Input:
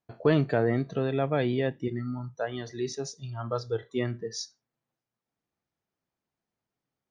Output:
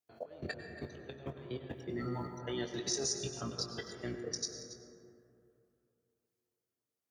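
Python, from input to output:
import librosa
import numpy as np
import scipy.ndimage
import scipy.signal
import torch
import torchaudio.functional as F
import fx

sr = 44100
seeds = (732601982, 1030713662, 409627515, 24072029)

y = fx.octave_divider(x, sr, octaves=1, level_db=-1.0)
y = fx.bass_treble(y, sr, bass_db=-12, treble_db=5)
y = fx.over_compress(y, sr, threshold_db=-38.0, ratio=-1.0)
y = fx.rotary_switch(y, sr, hz=7.0, then_hz=1.2, switch_at_s=1.08)
y = fx.level_steps(y, sr, step_db=20)
y = scipy.signal.sosfilt(scipy.signal.butter(4, 78.0, 'highpass', fs=sr, output='sos'), y)
y = fx.high_shelf(y, sr, hz=7500.0, db=10.0)
y = fx.doubler(y, sr, ms=22.0, db=-10.5)
y = y + 10.0 ** (-14.5 / 20.0) * np.pad(y, (int(279 * sr / 1000.0), 0))[:len(y)]
y = fx.rev_plate(y, sr, seeds[0], rt60_s=2.8, hf_ratio=0.3, predelay_ms=85, drr_db=5.5)
y = y * librosa.db_to_amplitude(2.0)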